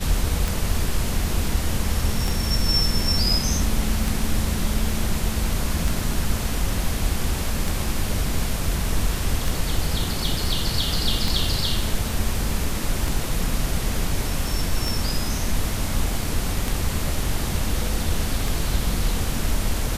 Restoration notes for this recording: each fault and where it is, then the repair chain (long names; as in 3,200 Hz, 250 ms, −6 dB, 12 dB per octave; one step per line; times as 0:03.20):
scratch tick 33 1/3 rpm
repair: click removal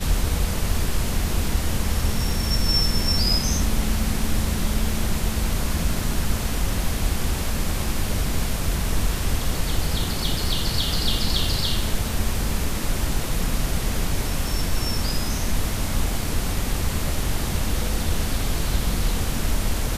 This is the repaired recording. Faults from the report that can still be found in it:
none of them is left